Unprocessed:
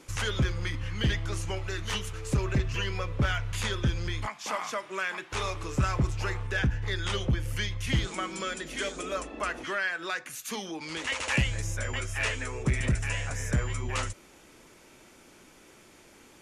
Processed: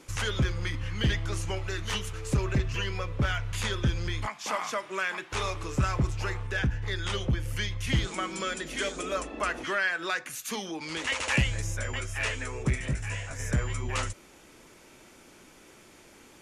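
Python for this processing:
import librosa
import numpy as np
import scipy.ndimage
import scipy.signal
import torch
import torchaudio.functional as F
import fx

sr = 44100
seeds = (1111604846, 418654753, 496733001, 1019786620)

y = fx.rider(x, sr, range_db=10, speed_s=2.0)
y = fx.detune_double(y, sr, cents=29, at=(12.75, 13.38), fade=0.02)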